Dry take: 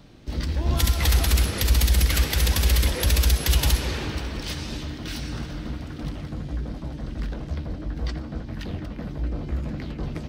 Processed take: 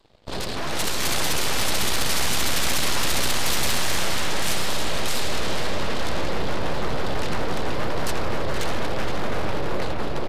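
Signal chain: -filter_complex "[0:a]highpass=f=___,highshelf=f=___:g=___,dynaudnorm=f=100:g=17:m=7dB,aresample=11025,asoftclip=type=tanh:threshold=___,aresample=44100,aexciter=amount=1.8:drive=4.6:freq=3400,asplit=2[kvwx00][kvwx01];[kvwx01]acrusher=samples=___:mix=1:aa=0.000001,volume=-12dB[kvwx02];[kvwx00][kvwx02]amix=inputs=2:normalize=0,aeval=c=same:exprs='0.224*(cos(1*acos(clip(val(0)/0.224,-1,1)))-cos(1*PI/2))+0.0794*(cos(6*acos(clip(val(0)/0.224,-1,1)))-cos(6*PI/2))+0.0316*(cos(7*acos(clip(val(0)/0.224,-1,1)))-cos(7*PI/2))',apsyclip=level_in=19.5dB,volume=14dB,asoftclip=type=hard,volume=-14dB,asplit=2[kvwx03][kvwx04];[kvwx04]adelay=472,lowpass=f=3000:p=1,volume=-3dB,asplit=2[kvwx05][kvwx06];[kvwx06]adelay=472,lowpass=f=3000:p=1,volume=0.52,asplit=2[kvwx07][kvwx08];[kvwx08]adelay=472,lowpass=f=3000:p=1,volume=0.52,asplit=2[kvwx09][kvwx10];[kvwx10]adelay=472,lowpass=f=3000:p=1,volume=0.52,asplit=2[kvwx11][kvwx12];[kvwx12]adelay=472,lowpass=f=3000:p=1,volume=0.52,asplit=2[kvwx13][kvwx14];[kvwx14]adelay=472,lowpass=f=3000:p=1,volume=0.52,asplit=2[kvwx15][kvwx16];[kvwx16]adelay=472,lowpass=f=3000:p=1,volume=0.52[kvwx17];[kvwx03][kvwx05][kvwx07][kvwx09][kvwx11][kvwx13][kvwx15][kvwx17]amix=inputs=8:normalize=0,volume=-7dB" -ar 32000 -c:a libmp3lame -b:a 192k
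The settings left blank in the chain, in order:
220, 3700, -6.5, -23.5dB, 21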